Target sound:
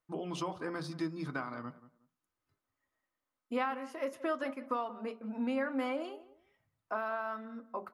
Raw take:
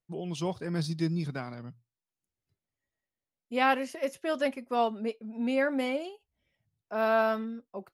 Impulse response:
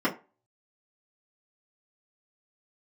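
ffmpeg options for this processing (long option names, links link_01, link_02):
-filter_complex "[0:a]equalizer=frequency=1200:width=1.2:gain=13.5,acompressor=threshold=-34dB:ratio=5,asplit=2[link_01][link_02];[link_02]adelay=181,lowpass=frequency=1400:poles=1,volume=-15.5dB,asplit=2[link_03][link_04];[link_04]adelay=181,lowpass=frequency=1400:poles=1,volume=0.23[link_05];[link_01][link_03][link_05]amix=inputs=3:normalize=0,asplit=2[link_06][link_07];[1:a]atrim=start_sample=2205[link_08];[link_07][link_08]afir=irnorm=-1:irlink=0,volume=-19dB[link_09];[link_06][link_09]amix=inputs=2:normalize=0,volume=-2dB"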